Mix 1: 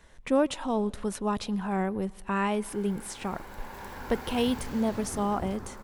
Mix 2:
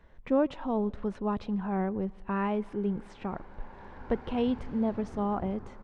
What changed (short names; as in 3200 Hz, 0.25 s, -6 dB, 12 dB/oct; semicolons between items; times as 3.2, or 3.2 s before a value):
background -4.0 dB; master: add tape spacing loss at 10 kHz 34 dB